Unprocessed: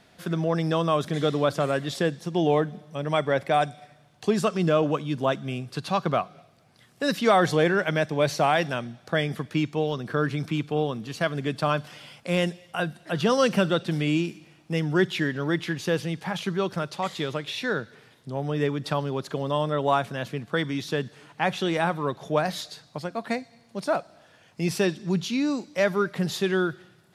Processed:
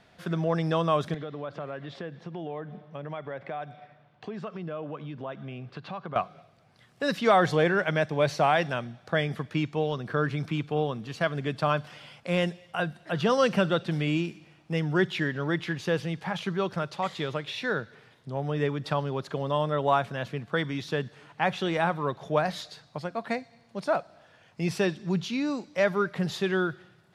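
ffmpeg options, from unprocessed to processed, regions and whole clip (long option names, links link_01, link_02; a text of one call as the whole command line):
ffmpeg -i in.wav -filter_complex "[0:a]asettb=1/sr,asplit=3[link_01][link_02][link_03];[link_01]atrim=end=1.144[link_04];[link_02]atrim=start=1.14:end=6.16,asetpts=PTS-STARTPTS,afade=type=in:duration=0.004:curve=qsin,afade=type=out:start_time=5.016:duration=0.004:curve=qsin,acompressor=threshold=-32dB:ratio=4:attack=3.2:release=140:knee=1:detection=peak,highpass=110,lowpass=3000[link_05];[link_03]atrim=start=6.156[link_06];[link_04][link_05]acrossfade=duration=0.004:curve1=hsin:curve2=qsin[link_07];[link_07][link_06]acrossfade=duration=0.004:curve1=qsin:curve2=hsin,lowpass=frequency=3300:poles=1,equalizer=frequency=280:width_type=o:width=1.3:gain=-4" out.wav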